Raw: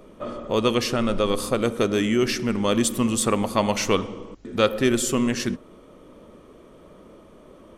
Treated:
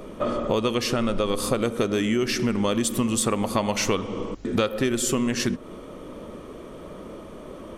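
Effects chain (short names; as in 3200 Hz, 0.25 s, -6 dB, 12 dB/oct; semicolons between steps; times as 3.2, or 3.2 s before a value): compressor 6:1, threshold -29 dBFS, peak gain reduction 15 dB; gain +8.5 dB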